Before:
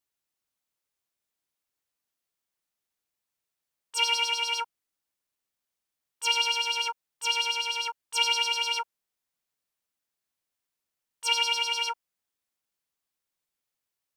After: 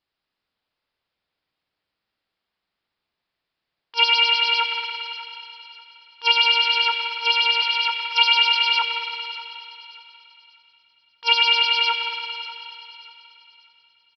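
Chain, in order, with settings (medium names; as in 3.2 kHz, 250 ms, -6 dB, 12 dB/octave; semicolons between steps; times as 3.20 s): thinning echo 590 ms, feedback 36%, high-pass 960 Hz, level -15 dB; on a send at -2 dB: reverberation RT60 2.5 s, pre-delay 107 ms; on the sum: resampled via 11.025 kHz; 7.62–8.82 s: steep high-pass 510 Hz 48 dB/octave; trim +8 dB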